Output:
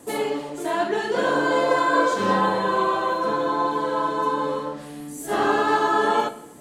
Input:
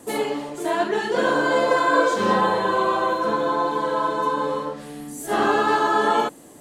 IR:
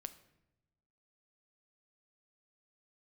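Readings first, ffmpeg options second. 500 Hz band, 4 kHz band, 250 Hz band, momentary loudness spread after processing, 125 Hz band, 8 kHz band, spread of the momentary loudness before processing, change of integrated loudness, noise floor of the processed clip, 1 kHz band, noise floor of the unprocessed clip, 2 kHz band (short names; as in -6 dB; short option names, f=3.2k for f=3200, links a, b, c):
-1.0 dB, -1.5 dB, -0.5 dB, 9 LU, 0.0 dB, -1.5 dB, 9 LU, -1.0 dB, -39 dBFS, -1.0 dB, -45 dBFS, -1.5 dB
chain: -filter_complex "[1:a]atrim=start_sample=2205[a];[0:a][a]afir=irnorm=-1:irlink=0,volume=3dB"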